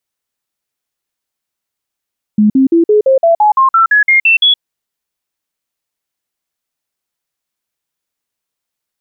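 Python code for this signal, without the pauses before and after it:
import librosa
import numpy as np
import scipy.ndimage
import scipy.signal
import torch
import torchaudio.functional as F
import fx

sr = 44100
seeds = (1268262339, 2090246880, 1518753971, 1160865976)

y = fx.stepped_sweep(sr, from_hz=211.0, direction='up', per_octave=3, tones=13, dwell_s=0.12, gap_s=0.05, level_db=-5.0)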